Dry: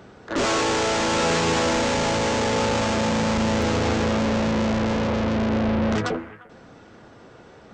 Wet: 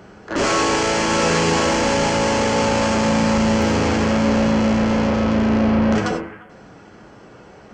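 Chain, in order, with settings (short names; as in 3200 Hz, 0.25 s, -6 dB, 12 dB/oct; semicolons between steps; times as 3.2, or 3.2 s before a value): notch 3700 Hz, Q 7.4; non-linear reverb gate 0.12 s flat, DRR 4 dB; gain +2.5 dB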